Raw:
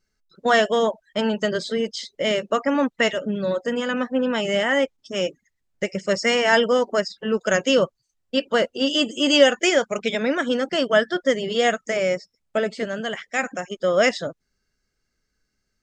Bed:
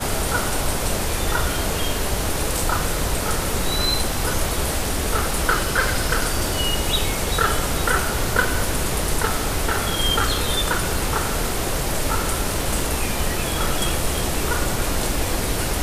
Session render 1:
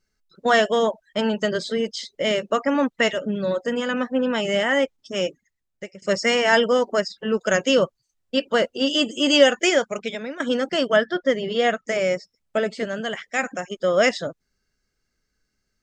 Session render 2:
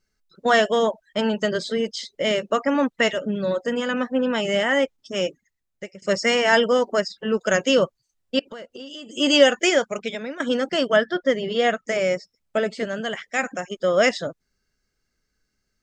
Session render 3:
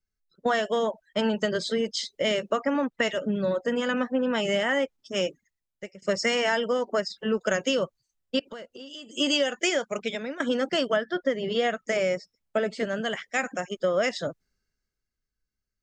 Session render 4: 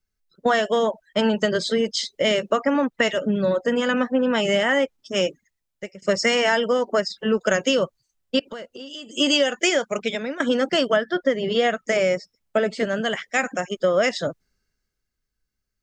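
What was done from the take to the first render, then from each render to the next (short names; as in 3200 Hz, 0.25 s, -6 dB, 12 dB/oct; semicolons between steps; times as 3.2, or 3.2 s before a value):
5.23–6.02 fade out, to -19 dB; 9.74–10.4 fade out, to -15 dB; 10.96–11.88 air absorption 110 m
8.39–9.17 compressor 10:1, threshold -34 dBFS
compressor 16:1, threshold -21 dBFS, peak gain reduction 13.5 dB; three-band expander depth 40%
gain +5 dB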